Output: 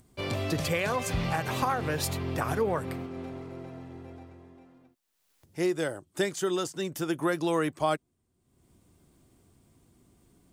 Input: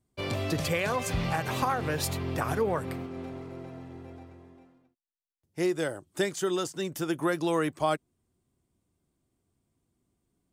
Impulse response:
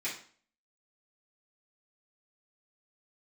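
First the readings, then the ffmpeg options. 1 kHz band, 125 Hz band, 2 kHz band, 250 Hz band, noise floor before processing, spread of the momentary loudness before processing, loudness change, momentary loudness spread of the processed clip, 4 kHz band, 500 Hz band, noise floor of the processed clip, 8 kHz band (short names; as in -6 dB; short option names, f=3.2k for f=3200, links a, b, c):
0.0 dB, 0.0 dB, 0.0 dB, 0.0 dB, -80 dBFS, 15 LU, 0.0 dB, 15 LU, 0.0 dB, 0.0 dB, -75 dBFS, 0.0 dB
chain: -af "acompressor=mode=upward:threshold=-48dB:ratio=2.5"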